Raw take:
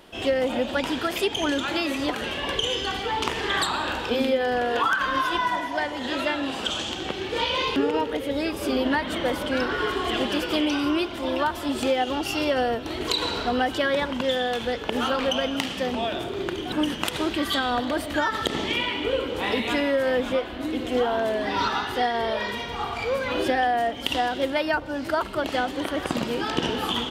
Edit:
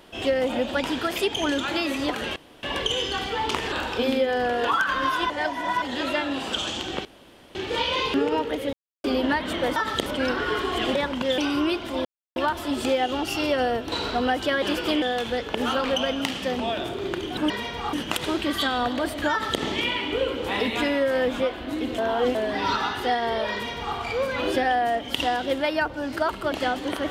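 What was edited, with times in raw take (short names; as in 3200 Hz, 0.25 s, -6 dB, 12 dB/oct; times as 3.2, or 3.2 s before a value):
2.36 insert room tone 0.27 s
3.45–3.84 cut
5.42–5.94 reverse
7.17 insert room tone 0.50 s
8.35–8.66 mute
10.27–10.67 swap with 13.94–14.37
11.34 insert silence 0.31 s
12.9–13.24 cut
18.23–18.53 copy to 9.38
20.9–21.27 reverse
22.45–22.88 copy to 16.85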